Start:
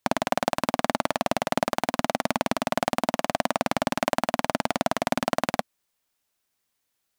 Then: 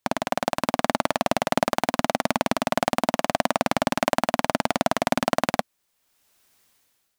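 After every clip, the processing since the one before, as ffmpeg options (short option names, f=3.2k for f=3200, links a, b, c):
-af "dynaudnorm=f=170:g=7:m=16dB,volume=-1dB"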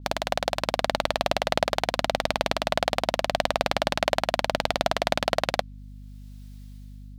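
-af "equalizer=f=250:t=o:w=1:g=-10,equalizer=f=500:t=o:w=1:g=4,equalizer=f=1k:t=o:w=1:g=-4,equalizer=f=4k:t=o:w=1:g=7,aeval=exprs='val(0)+0.01*(sin(2*PI*50*n/s)+sin(2*PI*2*50*n/s)/2+sin(2*PI*3*50*n/s)/3+sin(2*PI*4*50*n/s)/4+sin(2*PI*5*50*n/s)/5)':c=same,adynamicequalizer=threshold=0.00631:dfrequency=5300:dqfactor=0.7:tfrequency=5300:tqfactor=0.7:attack=5:release=100:ratio=0.375:range=3.5:mode=cutabove:tftype=highshelf,volume=-1dB"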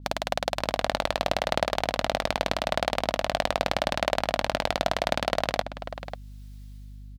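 -filter_complex "[0:a]asplit=2[a][b];[b]adelay=542.3,volume=-10dB,highshelf=f=4k:g=-12.2[c];[a][c]amix=inputs=2:normalize=0,volume=-1.5dB"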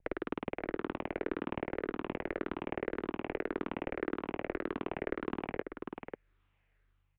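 -filter_complex "[0:a]afftfilt=real='re*pow(10,7/40*sin(2*PI*(0.7*log(max(b,1)*sr/1024/100)/log(2)-(-1.8)*(pts-256)/sr)))':imag='im*pow(10,7/40*sin(2*PI*(0.7*log(max(b,1)*sr/1024/100)/log(2)-(-1.8)*(pts-256)/sr)))':win_size=1024:overlap=0.75,acrossover=split=140|750[a][b][c];[a]acompressor=threshold=-53dB:ratio=4[d];[b]acompressor=threshold=-28dB:ratio=4[e];[c]acompressor=threshold=-30dB:ratio=4[f];[d][e][f]amix=inputs=3:normalize=0,highpass=f=300:t=q:w=0.5412,highpass=f=300:t=q:w=1.307,lowpass=f=2.7k:t=q:w=0.5176,lowpass=f=2.7k:t=q:w=0.7071,lowpass=f=2.7k:t=q:w=1.932,afreqshift=-290,volume=-5.5dB"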